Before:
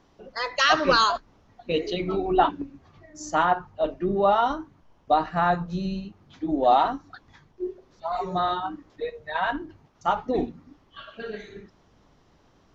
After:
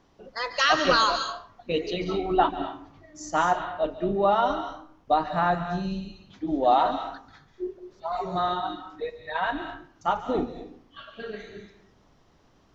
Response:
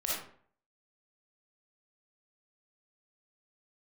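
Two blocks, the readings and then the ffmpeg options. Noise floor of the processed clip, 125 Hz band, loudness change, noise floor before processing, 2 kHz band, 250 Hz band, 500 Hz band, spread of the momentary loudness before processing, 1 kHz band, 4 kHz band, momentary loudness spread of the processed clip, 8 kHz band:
−61 dBFS, −1.5 dB, −1.0 dB, −61 dBFS, −1.0 dB, −1.0 dB, −1.0 dB, 17 LU, −1.0 dB, −0.5 dB, 19 LU, can't be measured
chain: -filter_complex "[0:a]asplit=2[link_01][link_02];[1:a]atrim=start_sample=2205,highshelf=frequency=2400:gain=10,adelay=141[link_03];[link_02][link_03]afir=irnorm=-1:irlink=0,volume=-17.5dB[link_04];[link_01][link_04]amix=inputs=2:normalize=0,volume=-1.5dB"

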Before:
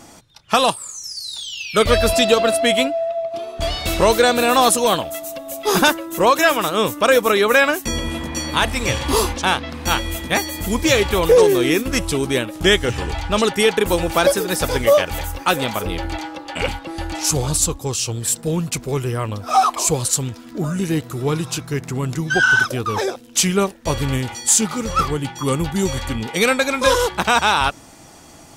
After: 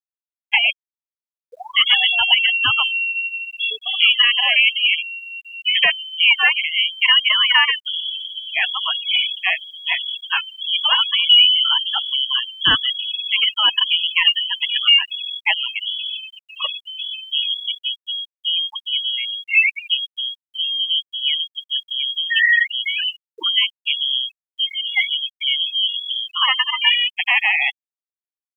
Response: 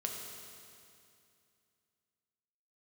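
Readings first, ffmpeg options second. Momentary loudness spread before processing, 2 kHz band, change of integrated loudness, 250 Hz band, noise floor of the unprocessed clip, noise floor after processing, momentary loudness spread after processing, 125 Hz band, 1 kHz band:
11 LU, +3.0 dB, +1.5 dB, below −25 dB, −43 dBFS, below −85 dBFS, 11 LU, below −25 dB, −10.0 dB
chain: -af "lowpass=frequency=2900:width_type=q:width=0.5098,lowpass=frequency=2900:width_type=q:width=0.6013,lowpass=frequency=2900:width_type=q:width=0.9,lowpass=frequency=2900:width_type=q:width=2.563,afreqshift=-3400,afftfilt=real='re*gte(hypot(re,im),0.224)':imag='im*gte(hypot(re,im),0.224)':win_size=1024:overlap=0.75,acrusher=bits=10:mix=0:aa=0.000001"

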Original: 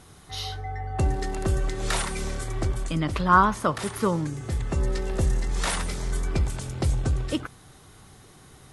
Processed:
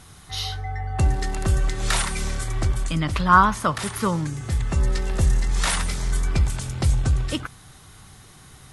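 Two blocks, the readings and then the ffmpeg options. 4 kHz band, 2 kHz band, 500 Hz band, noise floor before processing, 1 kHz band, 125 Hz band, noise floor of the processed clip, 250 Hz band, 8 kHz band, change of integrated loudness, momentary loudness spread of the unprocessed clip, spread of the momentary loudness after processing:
+5.0 dB, +4.0 dB, −2.0 dB, −51 dBFS, +3.0 dB, +4.0 dB, −48 dBFS, +1.0 dB, +5.0 dB, +3.5 dB, 10 LU, 9 LU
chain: -af "equalizer=frequency=410:width_type=o:width=1.8:gain=-7.5,volume=5dB"

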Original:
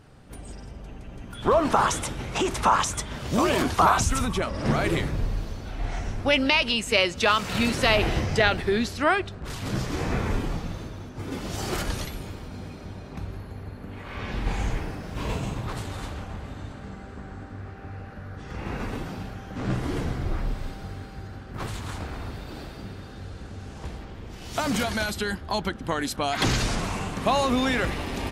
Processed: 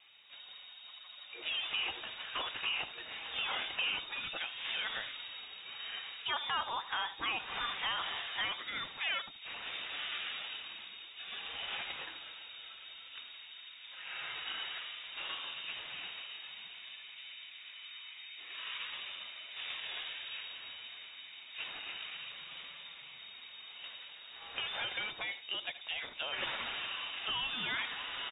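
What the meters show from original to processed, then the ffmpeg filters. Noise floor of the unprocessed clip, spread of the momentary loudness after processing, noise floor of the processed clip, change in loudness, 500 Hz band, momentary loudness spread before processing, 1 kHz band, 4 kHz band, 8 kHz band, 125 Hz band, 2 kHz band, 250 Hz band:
−41 dBFS, 13 LU, −52 dBFS, −12.5 dB, −25.0 dB, 19 LU, −16.0 dB, −4.5 dB, below −40 dB, −34.0 dB, −9.0 dB, −30.5 dB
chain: -filter_complex "[0:a]bandreject=frequency=620:width=12,acrossover=split=180|3000[link_01][link_02][link_03];[link_01]acompressor=threshold=-36dB:ratio=6[link_04];[link_04][link_02][link_03]amix=inputs=3:normalize=0,lowshelf=frequency=570:width_type=q:width=1.5:gain=-9.5,acrossover=split=700|2300[link_05][link_06][link_07];[link_05]asoftclip=type=tanh:threshold=-34.5dB[link_08];[link_06]acompressor=threshold=-38dB:ratio=6[link_09];[link_07]alimiter=limit=-23dB:level=0:latency=1[link_10];[link_08][link_09][link_10]amix=inputs=3:normalize=0,flanger=delay=2.3:depth=4.2:regen=-57:speed=0.55:shape=sinusoidal,asplit=2[link_11][link_12];[link_12]aecho=0:1:76:0.188[link_13];[link_11][link_13]amix=inputs=2:normalize=0,lowpass=frequency=3200:width_type=q:width=0.5098,lowpass=frequency=3200:width_type=q:width=0.6013,lowpass=frequency=3200:width_type=q:width=0.9,lowpass=frequency=3200:width_type=q:width=2.563,afreqshift=-3800"

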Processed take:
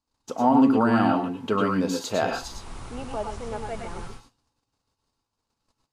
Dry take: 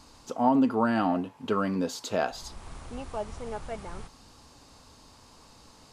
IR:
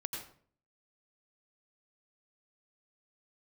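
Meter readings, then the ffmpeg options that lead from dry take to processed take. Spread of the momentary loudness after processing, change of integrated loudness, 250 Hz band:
19 LU, +5.0 dB, +5.0 dB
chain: -filter_complex "[0:a]agate=range=-35dB:threshold=-49dB:ratio=16:detection=peak[link_01];[1:a]atrim=start_sample=2205,afade=type=out:start_time=0.16:duration=0.01,atrim=end_sample=7497,asetrate=37926,aresample=44100[link_02];[link_01][link_02]afir=irnorm=-1:irlink=0,volume=4dB"

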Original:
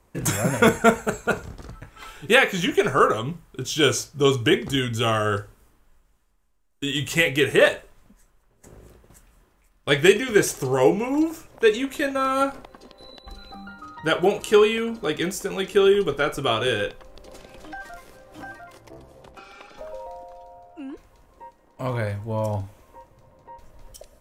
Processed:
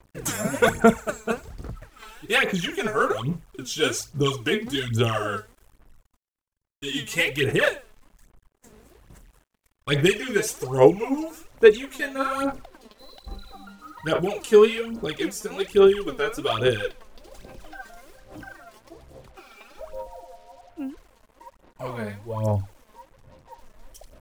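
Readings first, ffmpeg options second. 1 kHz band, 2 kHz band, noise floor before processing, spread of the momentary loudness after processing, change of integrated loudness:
−3.5 dB, −2.5 dB, −62 dBFS, 22 LU, −1.5 dB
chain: -af "aphaser=in_gain=1:out_gain=1:delay=4.7:decay=0.72:speed=1.2:type=sinusoidal,acrusher=bits=7:mix=0:aa=0.5,volume=-6dB"

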